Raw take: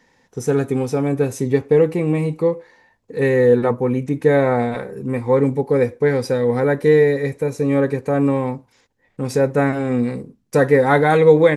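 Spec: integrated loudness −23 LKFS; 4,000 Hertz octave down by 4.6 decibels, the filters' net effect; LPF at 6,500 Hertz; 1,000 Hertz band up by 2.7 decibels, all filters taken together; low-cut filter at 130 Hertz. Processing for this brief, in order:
high-pass filter 130 Hz
low-pass filter 6,500 Hz
parametric band 1,000 Hz +4 dB
parametric band 4,000 Hz −5 dB
level −5.5 dB

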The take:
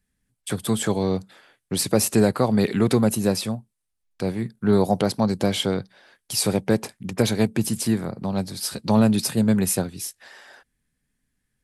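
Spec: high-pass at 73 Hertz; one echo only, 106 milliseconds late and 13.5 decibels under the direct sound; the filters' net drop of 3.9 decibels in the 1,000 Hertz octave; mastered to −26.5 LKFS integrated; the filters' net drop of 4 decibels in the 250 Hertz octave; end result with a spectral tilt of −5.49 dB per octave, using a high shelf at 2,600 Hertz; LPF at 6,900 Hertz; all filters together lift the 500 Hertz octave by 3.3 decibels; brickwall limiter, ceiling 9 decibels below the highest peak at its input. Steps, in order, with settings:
high-pass filter 73 Hz
low-pass filter 6,900 Hz
parametric band 250 Hz −6.5 dB
parametric band 500 Hz +8 dB
parametric band 1,000 Hz −9 dB
high-shelf EQ 2,600 Hz −3.5 dB
brickwall limiter −14.5 dBFS
single-tap delay 106 ms −13.5 dB
level +0.5 dB

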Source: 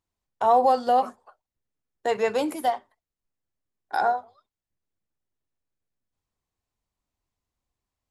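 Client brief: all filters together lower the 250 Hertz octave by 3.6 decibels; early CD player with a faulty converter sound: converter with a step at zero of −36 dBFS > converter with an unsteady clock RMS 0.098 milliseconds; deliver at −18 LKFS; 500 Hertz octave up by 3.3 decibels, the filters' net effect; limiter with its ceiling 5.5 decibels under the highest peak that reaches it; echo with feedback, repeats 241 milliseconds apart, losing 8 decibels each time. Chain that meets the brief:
parametric band 250 Hz −6 dB
parametric band 500 Hz +5 dB
brickwall limiter −12.5 dBFS
repeating echo 241 ms, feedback 40%, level −8 dB
converter with a step at zero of −36 dBFS
converter with an unsteady clock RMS 0.098 ms
level +6 dB

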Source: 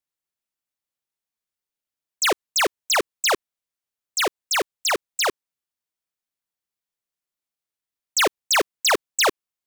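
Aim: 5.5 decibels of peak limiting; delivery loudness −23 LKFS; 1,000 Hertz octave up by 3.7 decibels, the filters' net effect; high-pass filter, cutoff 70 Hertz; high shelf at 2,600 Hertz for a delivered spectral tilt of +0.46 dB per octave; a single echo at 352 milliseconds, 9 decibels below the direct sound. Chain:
high-pass filter 70 Hz
parametric band 1,000 Hz +3.5 dB
high-shelf EQ 2,600 Hz +7 dB
brickwall limiter −12 dBFS
single-tap delay 352 ms −9 dB
level −3 dB

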